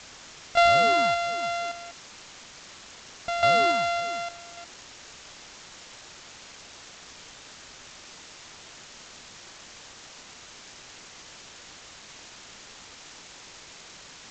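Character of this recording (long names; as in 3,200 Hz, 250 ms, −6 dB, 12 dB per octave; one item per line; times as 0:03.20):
a buzz of ramps at a fixed pitch in blocks of 64 samples
sample-and-hold tremolo, depth 90%
a quantiser's noise floor 8 bits, dither triangular
G.722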